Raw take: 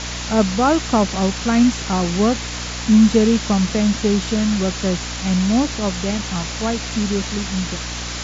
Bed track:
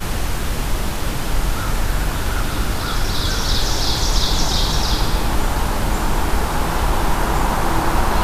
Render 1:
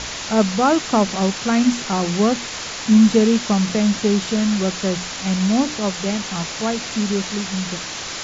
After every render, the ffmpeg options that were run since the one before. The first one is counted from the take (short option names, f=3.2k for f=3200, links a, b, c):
-af "bandreject=f=60:t=h:w=6,bandreject=f=120:t=h:w=6,bandreject=f=180:t=h:w=6,bandreject=f=240:t=h:w=6,bandreject=f=300:t=h:w=6"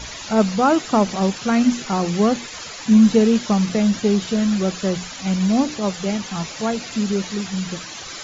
-af "afftdn=nr=12:nf=-30"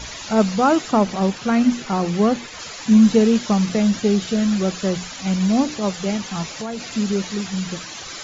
-filter_complex "[0:a]asettb=1/sr,asplit=3[a][b][c];[a]atrim=end=0.914[d];[b]atrim=start=0.91:end=2.59,asetpts=PTS-STARTPTS,afade=t=in:d=0.004:c=qsin,afade=t=out:st=1.676:d=0.004:c=qsin,highshelf=f=4.6k:g=-6.5[e];[c]atrim=start=2.586[f];[d][e]acrossfade=d=0.004:c1=hsin:c2=qsin[g];[g][f]acrossfade=d=0.004:c1=qsin:c2=hsin,asettb=1/sr,asplit=3[h][i][j];[h]atrim=end=4.034[k];[i]atrim=start=4.03:end=4.44,asetpts=PTS-STARTPTS,afade=t=in:d=0.004:c=qsin,afade=t=out:st=0.406:d=0.004:c=qsin,bandreject=f=1k:w=6.2[l];[j]atrim=start=4.436[m];[k][l]acrossfade=d=0.004:c1=hsin:c2=qsin[n];[n][m]acrossfade=d=0.004:c1=qsin:c2=hsin,asettb=1/sr,asplit=3[o][p][q];[o]atrim=end=6.434[r];[p]atrim=start=6.43:end=6.92,asetpts=PTS-STARTPTS,afade=t=in:d=0.004:c=qsin,afade=t=out:st=0.486:d=0.004:c=qsin,acompressor=threshold=-24dB:ratio=6:attack=3.2:release=140:knee=1:detection=peak[s];[q]atrim=start=6.916[t];[r][s]acrossfade=d=0.004:c1=hsin:c2=qsin[u];[u][t]acrossfade=d=0.004:c1=qsin:c2=hsin"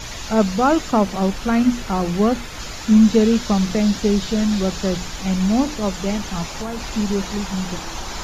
-filter_complex "[1:a]volume=-14.5dB[a];[0:a][a]amix=inputs=2:normalize=0"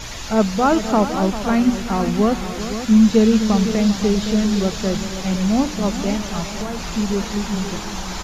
-af "aecho=1:1:251|394|513:0.141|0.237|0.282"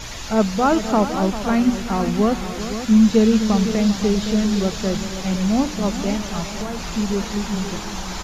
-af "volume=-1dB"